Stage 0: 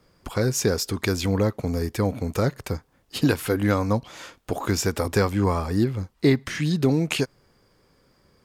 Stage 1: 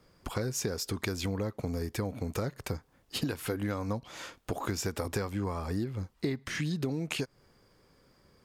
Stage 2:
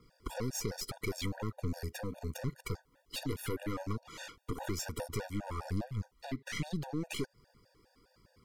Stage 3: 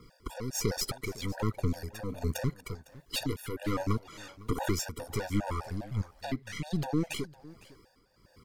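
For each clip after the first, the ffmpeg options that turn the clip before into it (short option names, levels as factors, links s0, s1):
-af "acompressor=threshold=0.0447:ratio=6,volume=0.75"
-af "aphaser=in_gain=1:out_gain=1:delay=4.2:decay=0.33:speed=1.2:type=triangular,aeval=exprs='(tanh(39.8*val(0)+0.65)-tanh(0.65))/39.8':c=same,afftfilt=real='re*gt(sin(2*PI*4.9*pts/sr)*(1-2*mod(floor(b*sr/1024/480),2)),0)':imag='im*gt(sin(2*PI*4.9*pts/sr)*(1-2*mod(floor(b*sr/1024/480),2)),0)':win_size=1024:overlap=0.75,volume=1.41"
-af "tremolo=f=1.3:d=0.68,aecho=1:1:506:0.0944,volume=2.51"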